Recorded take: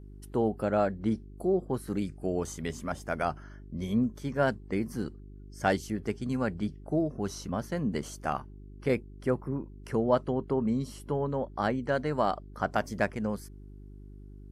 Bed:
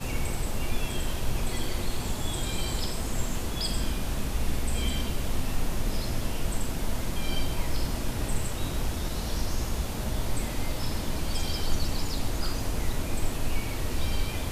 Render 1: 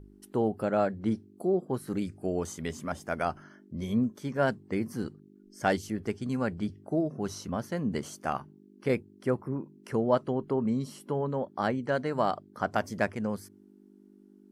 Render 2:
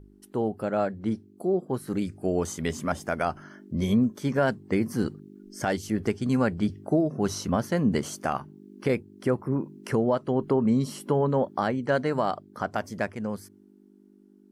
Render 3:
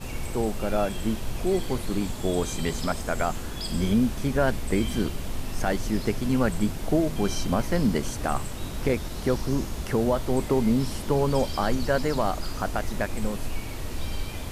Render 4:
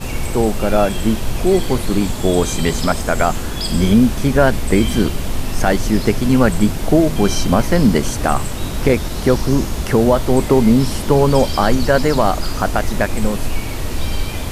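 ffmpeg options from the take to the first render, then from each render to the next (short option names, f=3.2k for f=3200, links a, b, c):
-af "bandreject=f=50:t=h:w=4,bandreject=f=100:t=h:w=4,bandreject=f=150:t=h:w=4"
-af "dynaudnorm=f=250:g=21:m=10.5dB,alimiter=limit=-13.5dB:level=0:latency=1:release=427"
-filter_complex "[1:a]volume=-3dB[a];[0:a][a]amix=inputs=2:normalize=0"
-af "volume=10.5dB,alimiter=limit=-1dB:level=0:latency=1"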